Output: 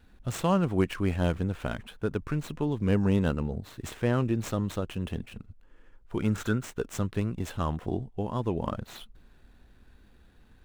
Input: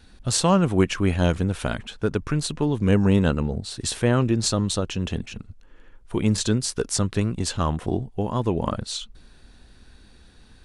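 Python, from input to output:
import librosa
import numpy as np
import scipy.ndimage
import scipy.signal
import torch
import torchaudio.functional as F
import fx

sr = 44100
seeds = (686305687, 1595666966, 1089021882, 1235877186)

y = scipy.signal.medfilt(x, 9)
y = fx.peak_eq(y, sr, hz=1400.0, db=14.0, octaves=0.32, at=(6.18, 6.63))
y = y * librosa.db_to_amplitude(-6.0)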